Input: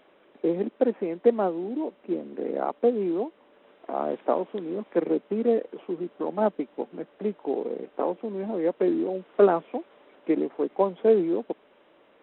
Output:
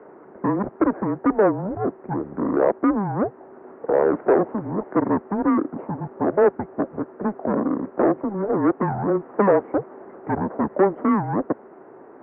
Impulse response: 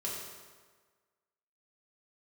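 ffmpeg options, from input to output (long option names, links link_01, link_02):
-filter_complex "[0:a]tiltshelf=frequency=930:gain=7.5,asplit=2[link_01][link_02];[link_02]highpass=frequency=720:poles=1,volume=27dB,asoftclip=type=tanh:threshold=-2.5dB[link_03];[link_01][link_03]amix=inputs=2:normalize=0,lowpass=frequency=1000:poles=1,volume=-6dB,highpass=frequency=570:width_type=q:width=0.5412,highpass=frequency=570:width_type=q:width=1.307,lowpass=frequency=2000:width_type=q:width=0.5176,lowpass=frequency=2000:width_type=q:width=0.7071,lowpass=frequency=2000:width_type=q:width=1.932,afreqshift=-200"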